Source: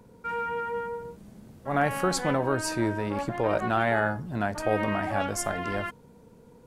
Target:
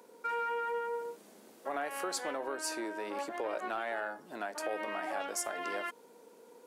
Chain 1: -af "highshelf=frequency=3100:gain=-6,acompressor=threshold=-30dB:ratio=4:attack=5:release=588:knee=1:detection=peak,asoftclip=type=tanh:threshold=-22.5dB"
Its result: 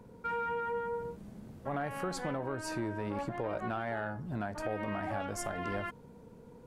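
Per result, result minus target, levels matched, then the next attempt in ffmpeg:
8,000 Hz band −7.0 dB; 250 Hz band +6.0 dB
-af "highshelf=frequency=3100:gain=4.5,acompressor=threshold=-30dB:ratio=4:attack=5:release=588:knee=1:detection=peak,asoftclip=type=tanh:threshold=-22.5dB"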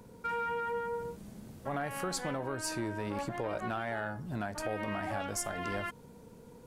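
250 Hz band +5.0 dB
-af "highshelf=frequency=3100:gain=4.5,acompressor=threshold=-30dB:ratio=4:attack=5:release=588:knee=1:detection=peak,highpass=frequency=320:width=0.5412,highpass=frequency=320:width=1.3066,asoftclip=type=tanh:threshold=-22.5dB"

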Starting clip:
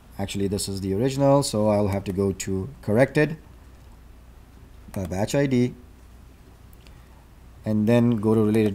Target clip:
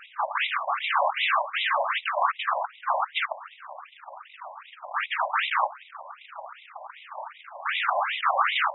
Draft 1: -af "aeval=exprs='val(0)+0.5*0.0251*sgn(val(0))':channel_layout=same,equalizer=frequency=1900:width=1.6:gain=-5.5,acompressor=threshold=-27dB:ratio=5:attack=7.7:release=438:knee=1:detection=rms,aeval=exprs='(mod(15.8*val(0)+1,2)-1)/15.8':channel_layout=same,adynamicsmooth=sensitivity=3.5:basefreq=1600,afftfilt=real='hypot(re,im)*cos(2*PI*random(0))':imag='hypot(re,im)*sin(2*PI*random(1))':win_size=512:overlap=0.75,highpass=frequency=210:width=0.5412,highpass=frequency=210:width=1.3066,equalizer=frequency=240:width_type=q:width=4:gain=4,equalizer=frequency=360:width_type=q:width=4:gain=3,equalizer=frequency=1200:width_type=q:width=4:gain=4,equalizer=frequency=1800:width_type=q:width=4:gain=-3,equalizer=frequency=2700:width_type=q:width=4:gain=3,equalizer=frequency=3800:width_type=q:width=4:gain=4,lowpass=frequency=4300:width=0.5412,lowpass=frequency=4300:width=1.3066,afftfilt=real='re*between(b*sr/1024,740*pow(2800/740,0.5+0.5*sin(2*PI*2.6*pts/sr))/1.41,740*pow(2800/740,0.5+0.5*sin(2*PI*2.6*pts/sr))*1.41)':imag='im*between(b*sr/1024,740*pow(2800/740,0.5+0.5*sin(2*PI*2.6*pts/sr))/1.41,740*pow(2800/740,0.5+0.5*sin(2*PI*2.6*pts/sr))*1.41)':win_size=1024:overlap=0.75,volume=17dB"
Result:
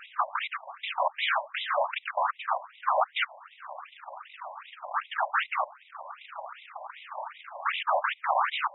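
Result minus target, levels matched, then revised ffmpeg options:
downward compressor: peak gain reduction +7 dB
-af "aeval=exprs='val(0)+0.5*0.0251*sgn(val(0))':channel_layout=same,equalizer=frequency=1900:width=1.6:gain=-5.5,acompressor=threshold=-18dB:ratio=5:attack=7.7:release=438:knee=1:detection=rms,aeval=exprs='(mod(15.8*val(0)+1,2)-1)/15.8':channel_layout=same,adynamicsmooth=sensitivity=3.5:basefreq=1600,afftfilt=real='hypot(re,im)*cos(2*PI*random(0))':imag='hypot(re,im)*sin(2*PI*random(1))':win_size=512:overlap=0.75,highpass=frequency=210:width=0.5412,highpass=frequency=210:width=1.3066,equalizer=frequency=240:width_type=q:width=4:gain=4,equalizer=frequency=360:width_type=q:width=4:gain=3,equalizer=frequency=1200:width_type=q:width=4:gain=4,equalizer=frequency=1800:width_type=q:width=4:gain=-3,equalizer=frequency=2700:width_type=q:width=4:gain=3,equalizer=frequency=3800:width_type=q:width=4:gain=4,lowpass=frequency=4300:width=0.5412,lowpass=frequency=4300:width=1.3066,afftfilt=real='re*between(b*sr/1024,740*pow(2800/740,0.5+0.5*sin(2*PI*2.6*pts/sr))/1.41,740*pow(2800/740,0.5+0.5*sin(2*PI*2.6*pts/sr))*1.41)':imag='im*between(b*sr/1024,740*pow(2800/740,0.5+0.5*sin(2*PI*2.6*pts/sr))/1.41,740*pow(2800/740,0.5+0.5*sin(2*PI*2.6*pts/sr))*1.41)':win_size=1024:overlap=0.75,volume=17dB"

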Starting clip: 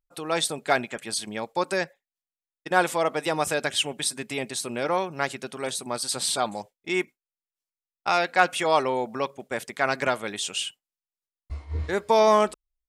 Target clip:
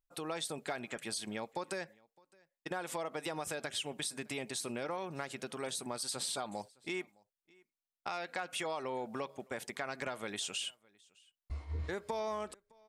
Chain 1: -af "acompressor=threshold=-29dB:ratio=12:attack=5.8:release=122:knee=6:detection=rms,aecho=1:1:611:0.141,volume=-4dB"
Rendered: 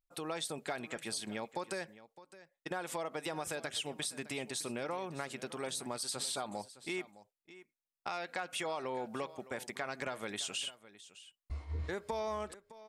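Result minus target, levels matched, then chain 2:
echo-to-direct +10 dB
-af "acompressor=threshold=-29dB:ratio=12:attack=5.8:release=122:knee=6:detection=rms,aecho=1:1:611:0.0447,volume=-4dB"

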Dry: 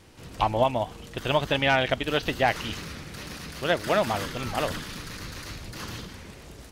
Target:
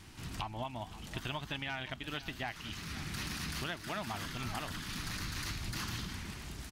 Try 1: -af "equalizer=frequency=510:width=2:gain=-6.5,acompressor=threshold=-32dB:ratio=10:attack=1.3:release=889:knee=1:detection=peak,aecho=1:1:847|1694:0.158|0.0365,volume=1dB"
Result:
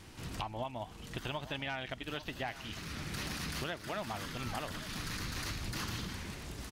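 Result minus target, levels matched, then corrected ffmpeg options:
echo 323 ms late; 500 Hz band +3.5 dB
-af "equalizer=frequency=510:width=2:gain=-15,acompressor=threshold=-32dB:ratio=10:attack=1.3:release=889:knee=1:detection=peak,aecho=1:1:524|1048:0.158|0.0365,volume=1dB"

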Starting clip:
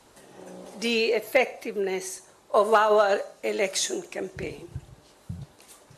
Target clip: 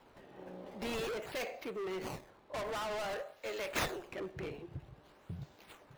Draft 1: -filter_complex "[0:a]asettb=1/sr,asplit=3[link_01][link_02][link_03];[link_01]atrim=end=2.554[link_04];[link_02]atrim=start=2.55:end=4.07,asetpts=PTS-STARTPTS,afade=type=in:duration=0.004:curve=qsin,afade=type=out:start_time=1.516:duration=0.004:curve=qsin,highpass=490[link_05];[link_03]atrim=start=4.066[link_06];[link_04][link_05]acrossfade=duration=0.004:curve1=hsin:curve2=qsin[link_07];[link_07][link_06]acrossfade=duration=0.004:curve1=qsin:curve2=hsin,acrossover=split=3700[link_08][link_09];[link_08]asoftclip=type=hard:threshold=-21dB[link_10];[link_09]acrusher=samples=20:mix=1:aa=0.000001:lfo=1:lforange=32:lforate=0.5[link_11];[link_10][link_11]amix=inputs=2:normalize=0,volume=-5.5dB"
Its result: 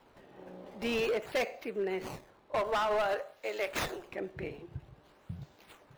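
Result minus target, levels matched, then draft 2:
hard clipping: distortion −7 dB
-filter_complex "[0:a]asettb=1/sr,asplit=3[link_01][link_02][link_03];[link_01]atrim=end=2.554[link_04];[link_02]atrim=start=2.55:end=4.07,asetpts=PTS-STARTPTS,afade=type=in:duration=0.004:curve=qsin,afade=type=out:start_time=1.516:duration=0.004:curve=qsin,highpass=490[link_05];[link_03]atrim=start=4.066[link_06];[link_04][link_05]acrossfade=duration=0.004:curve1=hsin:curve2=qsin[link_07];[link_07][link_06]acrossfade=duration=0.004:curve1=qsin:curve2=hsin,acrossover=split=3700[link_08][link_09];[link_08]asoftclip=type=hard:threshold=-31.5dB[link_10];[link_09]acrusher=samples=20:mix=1:aa=0.000001:lfo=1:lforange=32:lforate=0.5[link_11];[link_10][link_11]amix=inputs=2:normalize=0,volume=-5.5dB"

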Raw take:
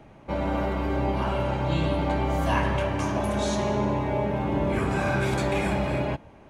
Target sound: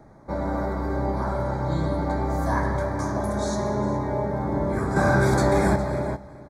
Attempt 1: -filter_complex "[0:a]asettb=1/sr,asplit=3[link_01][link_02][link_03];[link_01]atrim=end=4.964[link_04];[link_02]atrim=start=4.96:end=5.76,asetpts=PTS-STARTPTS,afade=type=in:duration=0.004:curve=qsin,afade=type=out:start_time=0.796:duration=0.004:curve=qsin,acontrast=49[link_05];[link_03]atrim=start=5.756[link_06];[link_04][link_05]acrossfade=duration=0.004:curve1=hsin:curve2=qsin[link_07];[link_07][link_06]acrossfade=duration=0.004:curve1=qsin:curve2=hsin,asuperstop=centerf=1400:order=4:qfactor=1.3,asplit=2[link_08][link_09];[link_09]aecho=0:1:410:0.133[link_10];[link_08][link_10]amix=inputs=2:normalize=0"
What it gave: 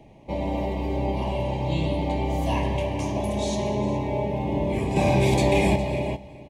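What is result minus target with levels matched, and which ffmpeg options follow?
2,000 Hz band −3.0 dB
-filter_complex "[0:a]asettb=1/sr,asplit=3[link_01][link_02][link_03];[link_01]atrim=end=4.964[link_04];[link_02]atrim=start=4.96:end=5.76,asetpts=PTS-STARTPTS,afade=type=in:duration=0.004:curve=qsin,afade=type=out:start_time=0.796:duration=0.004:curve=qsin,acontrast=49[link_05];[link_03]atrim=start=5.756[link_06];[link_04][link_05]acrossfade=duration=0.004:curve1=hsin:curve2=qsin[link_07];[link_07][link_06]acrossfade=duration=0.004:curve1=qsin:curve2=hsin,asuperstop=centerf=2800:order=4:qfactor=1.3,asplit=2[link_08][link_09];[link_09]aecho=0:1:410:0.133[link_10];[link_08][link_10]amix=inputs=2:normalize=0"

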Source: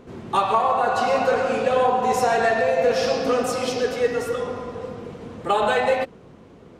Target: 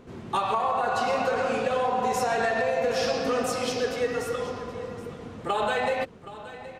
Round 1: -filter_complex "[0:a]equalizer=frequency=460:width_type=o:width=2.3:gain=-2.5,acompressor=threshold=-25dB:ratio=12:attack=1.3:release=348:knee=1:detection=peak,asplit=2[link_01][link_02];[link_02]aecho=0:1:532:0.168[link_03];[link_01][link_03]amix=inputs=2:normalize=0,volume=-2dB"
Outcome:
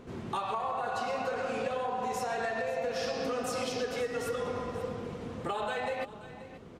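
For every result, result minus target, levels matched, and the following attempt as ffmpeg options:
downward compressor: peak gain reduction +8 dB; echo 240 ms early
-filter_complex "[0:a]equalizer=frequency=460:width_type=o:width=2.3:gain=-2.5,acompressor=threshold=-16.5dB:ratio=12:attack=1.3:release=348:knee=1:detection=peak,asplit=2[link_01][link_02];[link_02]aecho=0:1:532:0.168[link_03];[link_01][link_03]amix=inputs=2:normalize=0,volume=-2dB"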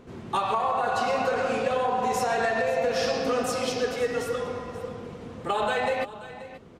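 echo 240 ms early
-filter_complex "[0:a]equalizer=frequency=460:width_type=o:width=2.3:gain=-2.5,acompressor=threshold=-16.5dB:ratio=12:attack=1.3:release=348:knee=1:detection=peak,asplit=2[link_01][link_02];[link_02]aecho=0:1:772:0.168[link_03];[link_01][link_03]amix=inputs=2:normalize=0,volume=-2dB"

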